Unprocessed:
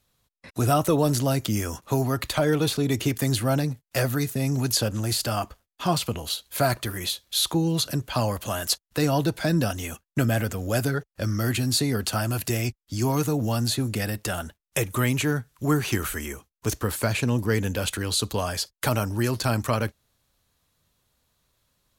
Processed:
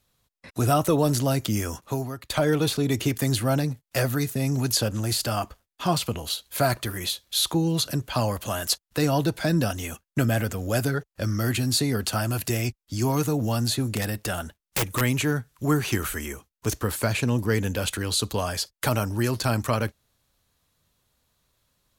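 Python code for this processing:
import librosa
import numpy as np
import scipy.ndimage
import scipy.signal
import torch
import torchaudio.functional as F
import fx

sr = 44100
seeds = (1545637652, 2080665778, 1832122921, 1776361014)

y = fx.overflow_wrap(x, sr, gain_db=17.0, at=(13.85, 15.01))
y = fx.edit(y, sr, fx.fade_out_to(start_s=1.71, length_s=0.59, floor_db=-22.5), tone=tone)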